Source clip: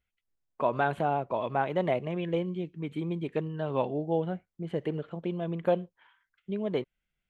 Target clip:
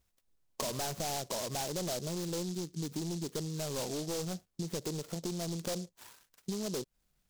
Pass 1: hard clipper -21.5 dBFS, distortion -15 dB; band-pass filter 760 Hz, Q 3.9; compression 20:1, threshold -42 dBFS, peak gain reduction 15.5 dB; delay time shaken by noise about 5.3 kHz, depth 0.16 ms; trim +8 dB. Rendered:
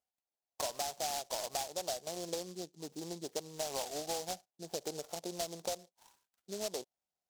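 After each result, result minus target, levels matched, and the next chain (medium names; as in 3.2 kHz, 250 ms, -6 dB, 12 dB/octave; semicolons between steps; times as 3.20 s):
hard clipper: distortion -8 dB; 1 kHz band +4.0 dB
hard clipper -29.5 dBFS, distortion -7 dB; band-pass filter 760 Hz, Q 3.9; compression 20:1, threshold -42 dBFS, peak gain reduction 11 dB; delay time shaken by noise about 5.3 kHz, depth 0.16 ms; trim +8 dB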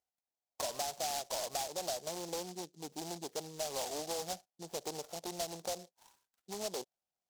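1 kHz band +4.5 dB
hard clipper -29.5 dBFS, distortion -7 dB; compression 20:1, threshold -42 dBFS, peak gain reduction 12 dB; delay time shaken by noise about 5.3 kHz, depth 0.16 ms; trim +8 dB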